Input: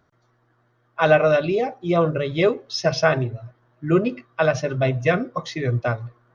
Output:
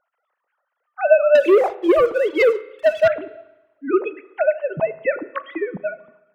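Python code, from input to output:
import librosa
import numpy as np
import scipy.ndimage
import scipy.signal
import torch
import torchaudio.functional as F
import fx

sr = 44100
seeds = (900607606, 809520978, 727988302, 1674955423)

y = fx.sine_speech(x, sr)
y = fx.leveller(y, sr, passes=2, at=(1.35, 3.08))
y = fx.rev_spring(y, sr, rt60_s=1.0, pass_ms=(32, 36), chirp_ms=25, drr_db=16.0)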